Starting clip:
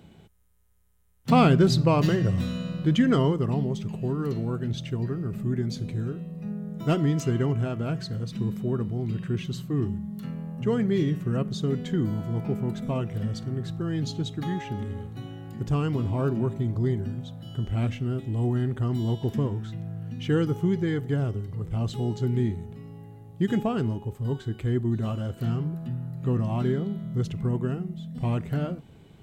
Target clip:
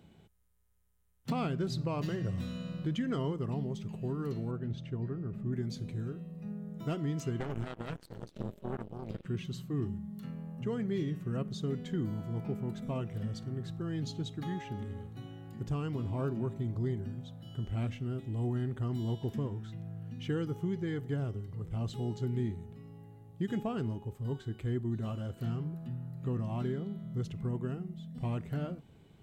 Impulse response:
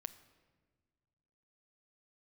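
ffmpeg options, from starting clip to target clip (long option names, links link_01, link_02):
-filter_complex "[0:a]asettb=1/sr,asplit=3[link_01][link_02][link_03];[link_01]atrim=end=4.514[link_04];[link_02]atrim=start=4.51:end=5.53,asetpts=PTS-STARTPTS,afade=type=in:duration=0.004:curve=qsin,afade=type=out:start_time=1.016:duration=0.004:curve=qsin,lowpass=frequency=1700:poles=1[link_05];[link_03]atrim=start=5.526[link_06];[link_04][link_05]acrossfade=duration=0.004:curve1=hsin:curve2=qsin[link_07];[link_07][link_06]acrossfade=duration=0.004:curve1=qsin:curve2=hsin,asettb=1/sr,asplit=3[link_08][link_09][link_10];[link_08]atrim=end=7.404[link_11];[link_09]atrim=start=7.4:end=9.26,asetpts=PTS-STARTPTS,afade=type=in:duration=0.004:curve=qsin,afade=type=out:start_time=1.856:duration=0.004:curve=qsin,aeval=exprs='0.178*(cos(1*acos(clip(val(0)/0.178,-1,1)))-cos(1*PI/2))+0.0891*(cos(2*acos(clip(val(0)/0.178,-1,1)))-cos(2*PI/2))+0.0282*(cos(7*acos(clip(val(0)/0.178,-1,1)))-cos(7*PI/2))':channel_layout=same[link_12];[link_10]atrim=start=9.256[link_13];[link_11][link_12]acrossfade=duration=0.004:curve1=hsin:curve2=qsin[link_14];[link_14][link_13]acrossfade=duration=0.004:curve1=qsin:curve2=hsin,alimiter=limit=-17dB:level=0:latency=1:release=498,volume=-7.5dB"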